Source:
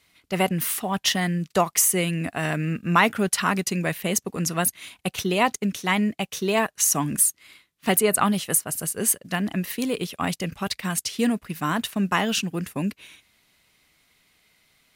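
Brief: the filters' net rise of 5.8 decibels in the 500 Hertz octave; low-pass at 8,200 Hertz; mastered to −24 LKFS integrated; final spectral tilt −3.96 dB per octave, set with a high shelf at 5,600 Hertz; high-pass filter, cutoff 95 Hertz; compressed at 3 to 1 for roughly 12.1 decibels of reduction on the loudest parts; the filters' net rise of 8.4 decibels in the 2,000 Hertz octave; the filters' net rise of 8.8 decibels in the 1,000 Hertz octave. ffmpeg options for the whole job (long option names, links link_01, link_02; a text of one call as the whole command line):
ffmpeg -i in.wav -af "highpass=95,lowpass=8200,equalizer=frequency=500:width_type=o:gain=5,equalizer=frequency=1000:width_type=o:gain=7.5,equalizer=frequency=2000:width_type=o:gain=8.5,highshelf=frequency=5600:gain=-7,acompressor=threshold=-21dB:ratio=3,volume=1.5dB" out.wav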